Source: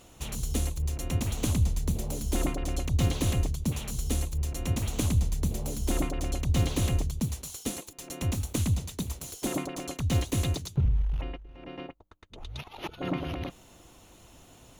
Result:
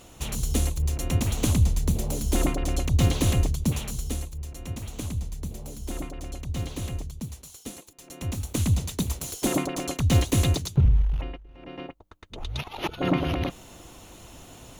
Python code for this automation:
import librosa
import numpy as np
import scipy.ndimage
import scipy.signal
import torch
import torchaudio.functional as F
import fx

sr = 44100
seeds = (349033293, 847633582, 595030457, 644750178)

y = fx.gain(x, sr, db=fx.line((3.75, 4.5), (4.37, -5.5), (8.0, -5.5), (8.86, 6.0), (10.95, 6.0), (11.45, -1.0), (12.37, 7.5)))